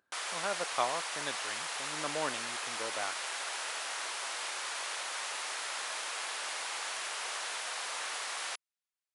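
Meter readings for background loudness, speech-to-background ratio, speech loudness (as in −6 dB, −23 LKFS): −36.0 LKFS, −2.5 dB, −38.5 LKFS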